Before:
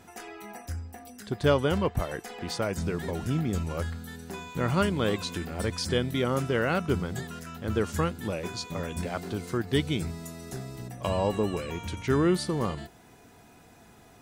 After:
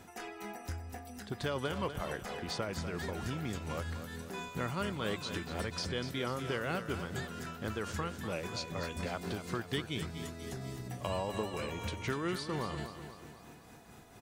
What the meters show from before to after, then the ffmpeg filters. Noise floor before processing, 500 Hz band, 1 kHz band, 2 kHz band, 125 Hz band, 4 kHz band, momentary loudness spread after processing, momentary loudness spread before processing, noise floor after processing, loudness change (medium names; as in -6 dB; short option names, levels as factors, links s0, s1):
-55 dBFS, -9.5 dB, -6.0 dB, -5.0 dB, -9.0 dB, -4.5 dB, 9 LU, 14 LU, -54 dBFS, -8.5 dB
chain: -filter_complex "[0:a]tremolo=f=4.3:d=0.45,acrossover=split=740|6000[s0][s1][s2];[s0]acompressor=threshold=0.0141:ratio=4[s3];[s1]acompressor=threshold=0.0141:ratio=4[s4];[s2]acompressor=threshold=0.00158:ratio=4[s5];[s3][s4][s5]amix=inputs=3:normalize=0,aecho=1:1:245|490|735|980|1225|1470:0.316|0.168|0.0888|0.0471|0.025|0.0132"